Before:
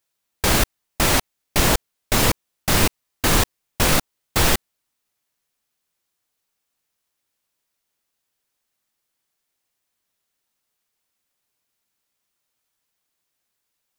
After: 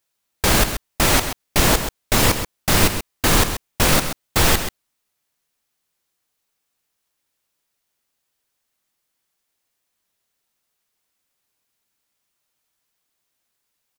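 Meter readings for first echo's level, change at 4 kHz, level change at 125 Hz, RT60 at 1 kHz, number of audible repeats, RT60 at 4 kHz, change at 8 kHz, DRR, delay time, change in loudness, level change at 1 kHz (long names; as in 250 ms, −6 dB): −9.5 dB, +2.0 dB, +2.0 dB, no reverb audible, 1, no reverb audible, +2.0 dB, no reverb audible, 131 ms, +2.0 dB, +2.0 dB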